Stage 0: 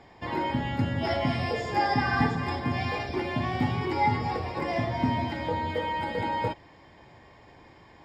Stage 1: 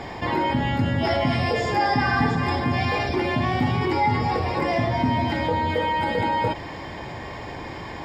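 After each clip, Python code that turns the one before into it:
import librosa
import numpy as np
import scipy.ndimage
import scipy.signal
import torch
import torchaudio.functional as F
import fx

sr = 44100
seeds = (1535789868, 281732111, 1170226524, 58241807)

y = fx.env_flatten(x, sr, amount_pct=50)
y = F.gain(torch.from_numpy(y), 2.0).numpy()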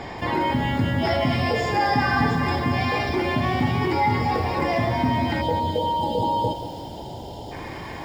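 y = fx.spec_erase(x, sr, start_s=5.42, length_s=2.1, low_hz=1000.0, high_hz=2800.0)
y = fx.echo_crushed(y, sr, ms=184, feedback_pct=55, bits=7, wet_db=-12.0)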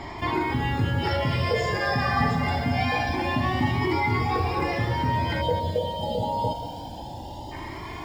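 y = fx.comb_cascade(x, sr, direction='rising', hz=0.26)
y = F.gain(torch.from_numpy(y), 2.5).numpy()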